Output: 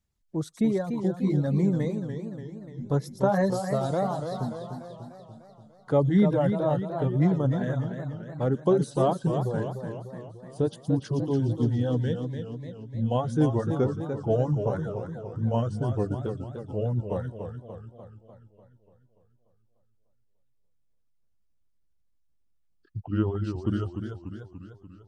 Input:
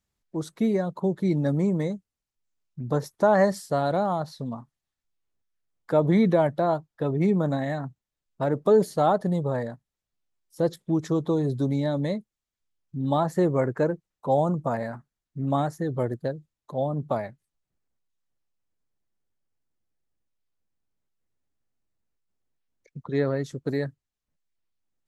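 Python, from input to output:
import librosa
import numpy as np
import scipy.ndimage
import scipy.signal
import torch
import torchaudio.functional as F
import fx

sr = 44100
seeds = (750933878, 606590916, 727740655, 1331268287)

y = fx.pitch_glide(x, sr, semitones=-5.5, runs='starting unshifted')
y = fx.low_shelf(y, sr, hz=180.0, db=9.5)
y = fx.echo_wet_highpass(y, sr, ms=115, feedback_pct=30, hz=3800.0, wet_db=-4.0)
y = fx.dereverb_blind(y, sr, rt60_s=0.72)
y = fx.echo_warbled(y, sr, ms=294, feedback_pct=57, rate_hz=2.8, cents=139, wet_db=-7.5)
y = y * librosa.db_to_amplitude(-2.5)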